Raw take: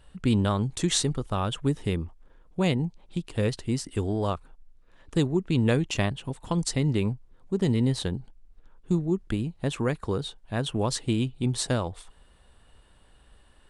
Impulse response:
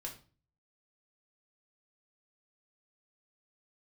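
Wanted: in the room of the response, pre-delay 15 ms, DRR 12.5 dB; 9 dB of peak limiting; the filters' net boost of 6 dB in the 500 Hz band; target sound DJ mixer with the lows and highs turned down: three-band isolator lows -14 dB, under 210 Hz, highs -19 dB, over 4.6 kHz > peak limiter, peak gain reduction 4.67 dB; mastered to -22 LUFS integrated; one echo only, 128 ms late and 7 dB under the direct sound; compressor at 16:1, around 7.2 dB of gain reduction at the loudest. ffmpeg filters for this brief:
-filter_complex "[0:a]equalizer=f=500:t=o:g=8,acompressor=threshold=0.0794:ratio=16,alimiter=limit=0.0794:level=0:latency=1,aecho=1:1:128:0.447,asplit=2[s0][s1];[1:a]atrim=start_sample=2205,adelay=15[s2];[s1][s2]afir=irnorm=-1:irlink=0,volume=0.299[s3];[s0][s3]amix=inputs=2:normalize=0,acrossover=split=210 4600:gain=0.2 1 0.112[s4][s5][s6];[s4][s5][s6]amix=inputs=3:normalize=0,volume=4.73,alimiter=limit=0.316:level=0:latency=1"

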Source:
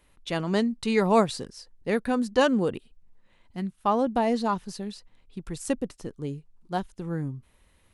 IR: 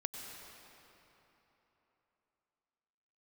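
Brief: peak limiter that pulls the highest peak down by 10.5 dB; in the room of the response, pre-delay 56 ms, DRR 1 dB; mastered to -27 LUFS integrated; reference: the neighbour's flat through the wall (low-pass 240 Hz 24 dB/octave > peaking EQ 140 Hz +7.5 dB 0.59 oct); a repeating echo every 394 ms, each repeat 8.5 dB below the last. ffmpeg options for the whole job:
-filter_complex "[0:a]alimiter=limit=0.106:level=0:latency=1,aecho=1:1:394|788|1182|1576:0.376|0.143|0.0543|0.0206,asplit=2[s0][s1];[1:a]atrim=start_sample=2205,adelay=56[s2];[s1][s2]afir=irnorm=-1:irlink=0,volume=0.891[s3];[s0][s3]amix=inputs=2:normalize=0,lowpass=f=240:w=0.5412,lowpass=f=240:w=1.3066,equalizer=f=140:t=o:w=0.59:g=7.5,volume=1.58"

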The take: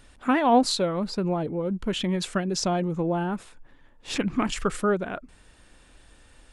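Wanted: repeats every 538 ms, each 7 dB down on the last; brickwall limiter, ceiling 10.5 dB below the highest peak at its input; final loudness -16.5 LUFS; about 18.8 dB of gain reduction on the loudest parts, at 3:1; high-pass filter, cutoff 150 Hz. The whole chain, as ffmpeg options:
-af "highpass=150,acompressor=threshold=0.00891:ratio=3,alimiter=level_in=3.35:limit=0.0631:level=0:latency=1,volume=0.299,aecho=1:1:538|1076|1614|2152|2690:0.447|0.201|0.0905|0.0407|0.0183,volume=21.1"

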